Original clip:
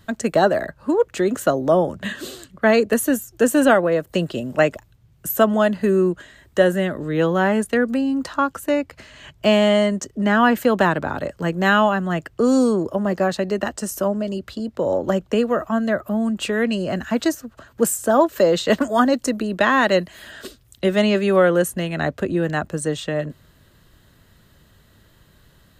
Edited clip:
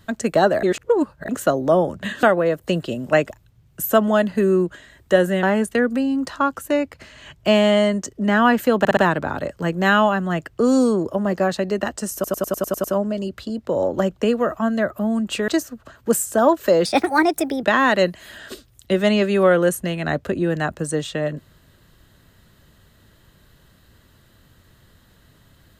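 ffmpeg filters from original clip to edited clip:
-filter_complex "[0:a]asplit=18[a][b][c][d][e][f][g][h][i][j][k][l][m][n][o][p][q][r];[a]atrim=end=0.632[s];[b]atrim=start=0.628:end=1.292,asetpts=PTS-STARTPTS,areverse[t];[c]atrim=start=1.288:end=2.232[u];[d]atrim=start=3.688:end=6.892[v];[e]atrim=start=7.408:end=10.832[w];[f]atrim=start=10.768:end=10.832[x];[g]atrim=start=10.768:end=10.832[y];[h]atrim=start=10.768:end=14.042[z];[i]atrim=start=13.938:end=14.042[aa];[j]atrim=start=13.938:end=14.042[ab];[k]atrim=start=13.938:end=14.042[ac];[l]atrim=start=13.938:end=14.042[ad];[m]atrim=start=13.938:end=14.042[ae];[n]atrim=start=13.938:end=14.042[af];[o]atrim=start=13.938:end=16.582[ag];[p]atrim=start=17.198:end=18.574[ah];[q]atrim=start=18.57:end=19.56,asetpts=PTS-STARTPTS,asetrate=56007,aresample=44100,atrim=end_sample=34377,asetpts=PTS-STARTPTS[ai];[r]atrim=start=19.556[aj];[s][t]acrossfade=d=0.004:c1=hsin:c2=hsin[ak];[ak][u]acrossfade=d=0.004:c1=hsin:c2=hsin[al];[al][v]acrossfade=d=0.004:c1=hsin:c2=hsin[am];[am][w]acrossfade=d=0.004:c1=hsin:c2=hsin[an];[an][x]acrossfade=d=0.004:c1=hsin:c2=hsin[ao];[ao][y]acrossfade=d=0.004:c1=hsin:c2=hsin[ap];[ap][z]acrossfade=d=0.004:c1=hsin:c2=hsin[aq];[aq][aa]acrossfade=d=0.004:c1=hsin:c2=hsin[ar];[ar][ab]acrossfade=d=0.004:c1=hsin:c2=hsin[as];[as][ac]acrossfade=d=0.004:c1=hsin:c2=hsin[at];[at][ad]acrossfade=d=0.004:c1=hsin:c2=hsin[au];[au][ae]acrossfade=d=0.004:c1=hsin:c2=hsin[av];[av][af]acrossfade=d=0.004:c1=hsin:c2=hsin[aw];[aw][ag]acrossfade=d=0.004:c1=hsin:c2=hsin[ax];[ax][ah]acrossfade=d=0.004:c1=hsin:c2=hsin[ay];[ay][ai]acrossfade=d=0.004:c1=hsin:c2=hsin[az];[az][aj]acrossfade=d=0.004:c1=hsin:c2=hsin"

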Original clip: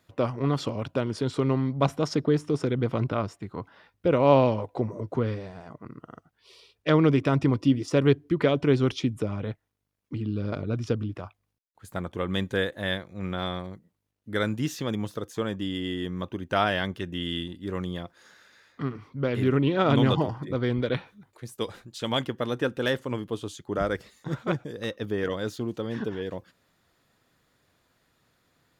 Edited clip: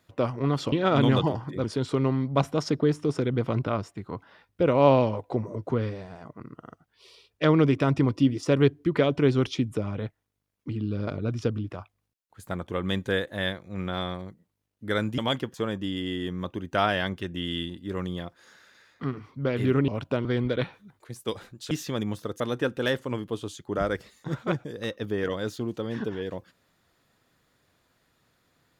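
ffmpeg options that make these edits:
-filter_complex "[0:a]asplit=9[a][b][c][d][e][f][g][h][i];[a]atrim=end=0.722[j];[b]atrim=start=19.658:end=20.582[k];[c]atrim=start=1.088:end=14.632[l];[d]atrim=start=22.038:end=22.402[m];[e]atrim=start=15.318:end=19.662[n];[f]atrim=start=0.718:end=1.092[o];[g]atrim=start=20.578:end=22.042[p];[h]atrim=start=14.628:end=15.322[q];[i]atrim=start=22.398[r];[j][k]acrossfade=d=0.004:c1=hsin:c2=hsin[s];[s][l]acrossfade=d=0.004:c1=hsin:c2=hsin[t];[t][m]acrossfade=d=0.004:c1=hsin:c2=hsin[u];[u][n]acrossfade=d=0.004:c1=hsin:c2=hsin[v];[v][o]acrossfade=d=0.004:c1=hsin:c2=hsin[w];[w][p]acrossfade=d=0.004:c1=hsin:c2=hsin[x];[x][q]acrossfade=d=0.004:c1=hsin:c2=hsin[y];[y][r]acrossfade=d=0.004:c1=hsin:c2=hsin"

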